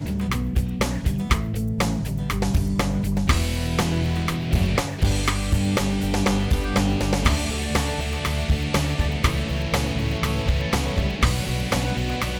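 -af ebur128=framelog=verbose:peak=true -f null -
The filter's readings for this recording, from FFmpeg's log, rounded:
Integrated loudness:
  I:         -23.3 LUFS
  Threshold: -33.3 LUFS
Loudness range:
  LRA:         1.4 LU
  Threshold: -43.1 LUFS
  LRA low:   -23.8 LUFS
  LRA high:  -22.4 LUFS
True peak:
  Peak:       -6.0 dBFS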